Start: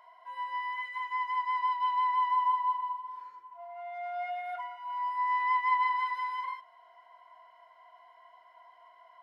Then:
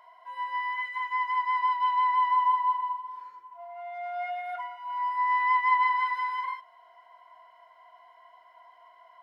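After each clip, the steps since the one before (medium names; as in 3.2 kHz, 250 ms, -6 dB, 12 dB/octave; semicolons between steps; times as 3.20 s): dynamic bell 1.6 kHz, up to +5 dB, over -42 dBFS, Q 1.5; trim +2 dB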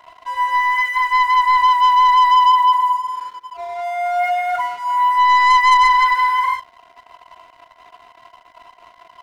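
waveshaping leveller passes 2; trim +7.5 dB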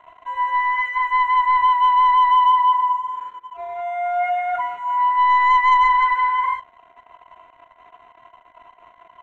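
boxcar filter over 9 samples; trim -2 dB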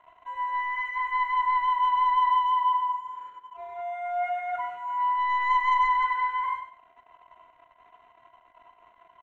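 feedback delay 96 ms, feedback 24%, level -9.5 dB; trim -8.5 dB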